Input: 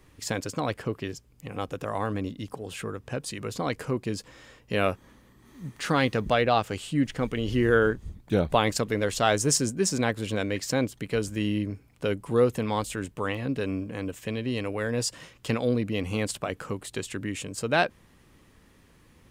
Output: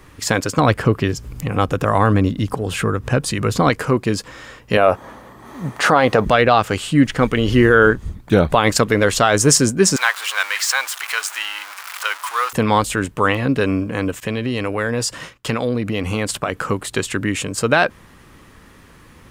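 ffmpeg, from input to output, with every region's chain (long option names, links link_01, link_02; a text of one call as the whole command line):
ffmpeg -i in.wav -filter_complex "[0:a]asettb=1/sr,asplit=3[link_01][link_02][link_03];[link_01]atrim=end=0.584[link_04];[link_02]atrim=start=0.58:end=3.7,asetpts=PTS-STARTPTS,afade=type=in:duration=0.004:curve=qsin,afade=type=out:start_time=3.116:duration=0.004:curve=qsin,lowshelf=frequency=200:gain=8.5,acompressor=mode=upward:threshold=-31dB:ratio=2.5:attack=3.2:release=140:knee=2.83:detection=peak[link_05];[link_03]atrim=start=3.696[link_06];[link_04][link_05]acrossfade=duration=0.004:curve1=hsin:curve2=qsin[link_07];[link_07][link_06]acrossfade=duration=0.004:curve1=qsin:curve2=hsin,asettb=1/sr,asplit=3[link_08][link_09][link_10];[link_08]atrim=end=4.774[link_11];[link_09]atrim=start=4.77:end=6.25,asetpts=PTS-STARTPTS,afade=type=in:duration=0.004:curve=qsin,afade=type=out:start_time=1.476:duration=0.004:curve=qsin,highpass=52,equalizer=frequency=700:width_type=o:width=1.4:gain=13[link_12];[link_10]atrim=start=6.246[link_13];[link_11][link_12]acrossfade=duration=0.004:curve1=hsin:curve2=qsin[link_14];[link_14][link_13]acrossfade=duration=0.004:curve1=qsin:curve2=hsin,asettb=1/sr,asplit=3[link_15][link_16][link_17];[link_15]atrim=end=9.964[link_18];[link_16]atrim=start=9.96:end=12.53,asetpts=PTS-STARTPTS,afade=type=in:duration=0.004:curve=qsin,afade=type=out:start_time=2.566:duration=0.004:curve=qsin,aeval=exprs='val(0)+0.5*0.0224*sgn(val(0))':channel_layout=same,highpass=frequency=970:width=0.5412,highpass=frequency=970:width=1.3066[link_19];[link_17]atrim=start=12.526[link_20];[link_18][link_19]acrossfade=duration=0.004:curve1=hsin:curve2=qsin[link_21];[link_21][link_20]acrossfade=duration=0.004:curve1=qsin:curve2=hsin,asettb=1/sr,asplit=3[link_22][link_23][link_24];[link_22]atrim=end=14.204[link_25];[link_23]atrim=start=14.2:end=16.59,asetpts=PTS-STARTPTS,afade=type=in:duration=0.004:curve=qsin,afade=type=out:start_time=2.386:duration=0.004:curve=qsin,agate=range=-33dB:threshold=-48dB:ratio=3:release=100:detection=peak,acompressor=threshold=-30dB:ratio=2.5:attack=3.2:release=140:knee=1:detection=peak[link_26];[link_24]atrim=start=16.586[link_27];[link_25][link_26]acrossfade=duration=0.004:curve1=hsin:curve2=qsin[link_28];[link_28][link_27]acrossfade=duration=0.004:curve1=qsin:curve2=hsin,equalizer=frequency=1300:width_type=o:width=1.1:gain=5.5,alimiter=level_in=12dB:limit=-1dB:release=50:level=0:latency=1,volume=-1dB" out.wav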